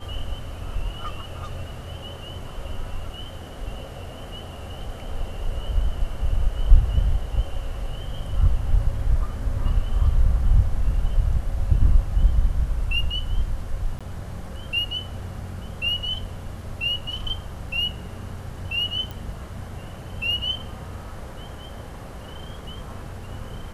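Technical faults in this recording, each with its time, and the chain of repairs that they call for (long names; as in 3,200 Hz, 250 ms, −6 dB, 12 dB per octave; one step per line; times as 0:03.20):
0:13.99–0:14.01: drop-out 16 ms
0:19.11: click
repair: click removal
repair the gap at 0:13.99, 16 ms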